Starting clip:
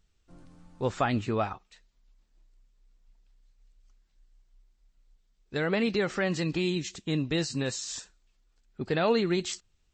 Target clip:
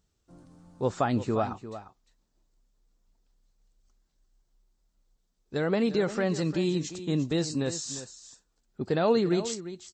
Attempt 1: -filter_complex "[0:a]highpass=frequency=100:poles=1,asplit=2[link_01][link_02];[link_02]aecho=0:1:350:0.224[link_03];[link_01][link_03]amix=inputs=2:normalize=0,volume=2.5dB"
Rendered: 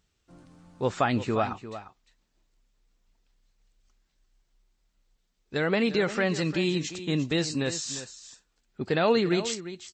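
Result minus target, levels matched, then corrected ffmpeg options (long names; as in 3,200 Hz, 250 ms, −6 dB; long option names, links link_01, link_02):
2,000 Hz band +6.0 dB
-filter_complex "[0:a]highpass=frequency=100:poles=1,equalizer=frequency=2400:width=0.88:gain=-9.5,asplit=2[link_01][link_02];[link_02]aecho=0:1:350:0.224[link_03];[link_01][link_03]amix=inputs=2:normalize=0,volume=2.5dB"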